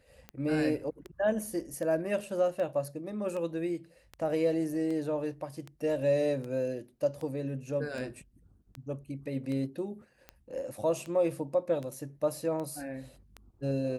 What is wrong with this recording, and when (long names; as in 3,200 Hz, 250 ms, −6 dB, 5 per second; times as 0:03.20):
scratch tick 78 rpm −27 dBFS